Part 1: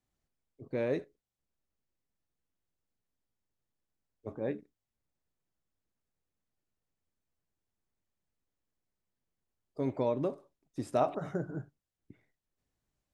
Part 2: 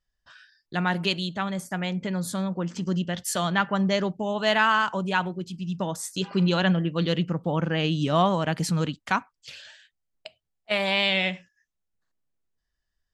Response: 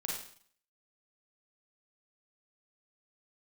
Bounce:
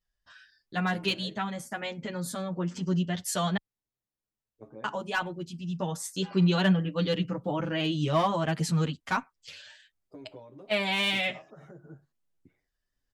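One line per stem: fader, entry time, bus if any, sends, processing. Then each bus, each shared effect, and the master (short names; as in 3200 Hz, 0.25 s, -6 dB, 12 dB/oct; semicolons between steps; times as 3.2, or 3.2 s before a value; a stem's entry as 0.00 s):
-1.5 dB, 0.35 s, no send, compressor 10:1, threshold -39 dBFS, peak gain reduction 16.5 dB
0.0 dB, 0.00 s, muted 3.57–4.84, no send, dry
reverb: off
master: wow and flutter 26 cents; hard clip -14 dBFS, distortion -25 dB; endless flanger 8.1 ms +0.31 Hz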